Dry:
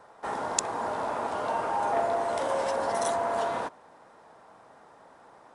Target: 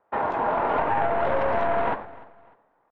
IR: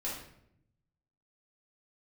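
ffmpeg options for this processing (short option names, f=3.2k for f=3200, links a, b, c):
-filter_complex "[0:a]flanger=delay=8.8:depth=6.8:regen=-68:speed=0.71:shape=triangular,dynaudnorm=f=370:g=7:m=8.5dB,asplit=2[a][b];[b]aeval=exprs='0.133*(abs(mod(val(0)/0.133+3,4)-2)-1)':c=same,volume=-6dB[c];[a][c]amix=inputs=2:normalize=0,agate=range=-22dB:threshold=-44dB:ratio=16:detection=peak,aeval=exprs='clip(val(0),-1,0.0447)':c=same,asplit=2[d][e];[1:a]atrim=start_sample=2205,asetrate=34839,aresample=44100,adelay=22[f];[e][f]afir=irnorm=-1:irlink=0,volume=-20dB[g];[d][g]amix=inputs=2:normalize=0,acompressor=threshold=-28dB:ratio=6,atempo=1.9,lowpass=f=2.7k:w=0.5412,lowpass=f=2.7k:w=1.3066,aecho=1:1:299|598:0.0891|0.0294,volume=9dB"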